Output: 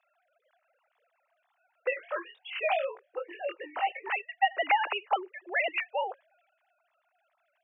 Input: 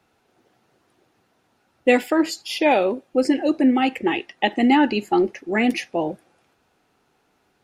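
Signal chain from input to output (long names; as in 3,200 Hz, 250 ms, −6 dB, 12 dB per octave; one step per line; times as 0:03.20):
three sine waves on the formant tracks
downward compressor 3 to 1, threshold −21 dBFS, peak gain reduction 10.5 dB
high-pass filter 650 Hz 24 dB per octave
0:01.90–0:04.09: chorus effect 2.8 Hz, delay 20 ms, depth 3 ms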